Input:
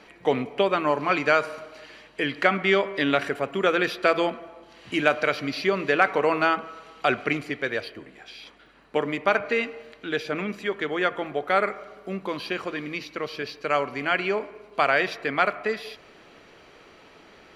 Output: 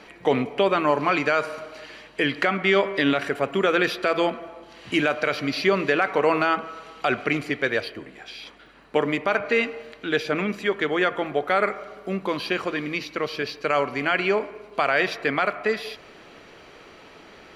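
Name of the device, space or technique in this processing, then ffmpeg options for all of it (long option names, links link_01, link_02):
stacked limiters: -af "alimiter=limit=-9dB:level=0:latency=1:release=373,alimiter=limit=-13dB:level=0:latency=1:release=32,volume=4dB"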